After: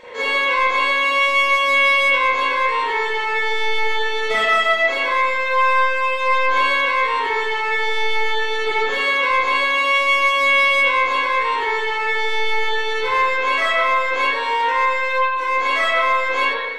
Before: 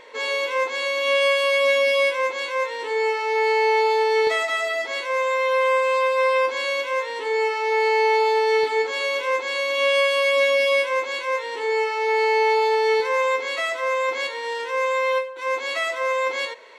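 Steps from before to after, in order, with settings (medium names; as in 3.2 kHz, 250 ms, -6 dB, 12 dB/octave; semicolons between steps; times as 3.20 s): saturation -20 dBFS, distortion -12 dB; reverberation RT60 1.0 s, pre-delay 33 ms, DRR -10 dB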